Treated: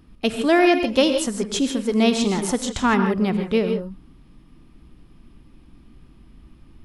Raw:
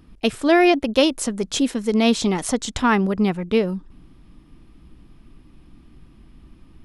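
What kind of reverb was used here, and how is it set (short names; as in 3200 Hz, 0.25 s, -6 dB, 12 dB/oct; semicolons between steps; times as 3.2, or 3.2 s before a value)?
non-linear reverb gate 0.18 s rising, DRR 6.5 dB; gain -1.5 dB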